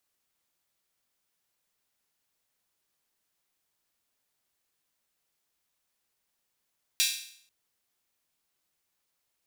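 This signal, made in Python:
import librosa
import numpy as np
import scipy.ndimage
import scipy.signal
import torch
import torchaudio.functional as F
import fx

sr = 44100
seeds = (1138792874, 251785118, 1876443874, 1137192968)

y = fx.drum_hat_open(sr, length_s=0.49, from_hz=3100.0, decay_s=0.61)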